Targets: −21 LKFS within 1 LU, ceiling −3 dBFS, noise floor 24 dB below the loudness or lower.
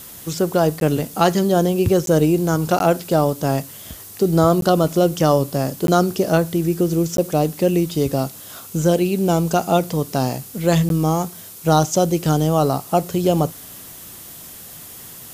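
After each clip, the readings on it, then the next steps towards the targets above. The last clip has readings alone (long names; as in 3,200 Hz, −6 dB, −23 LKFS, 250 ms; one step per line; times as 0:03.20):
number of dropouts 7; longest dropout 12 ms; background noise floor −38 dBFS; target noise floor −43 dBFS; integrated loudness −19.0 LKFS; sample peak −2.0 dBFS; target loudness −21.0 LKFS
→ repair the gap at 0:00.80/0:02.06/0:02.79/0:04.61/0:05.87/0:07.17/0:10.89, 12 ms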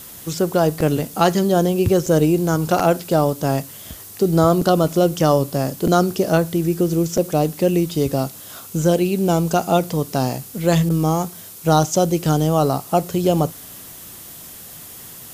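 number of dropouts 0; background noise floor −38 dBFS; target noise floor −43 dBFS
→ broadband denoise 6 dB, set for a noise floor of −38 dBFS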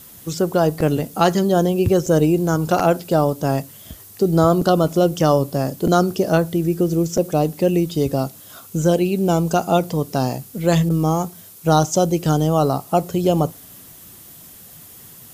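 background noise floor −43 dBFS; integrated loudness −19.0 LKFS; sample peak −2.0 dBFS; target loudness −21.0 LKFS
→ level −2 dB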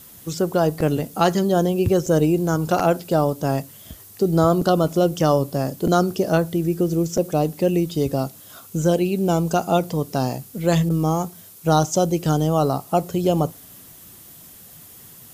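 integrated loudness −21.0 LKFS; sample peak −4.0 dBFS; background noise floor −45 dBFS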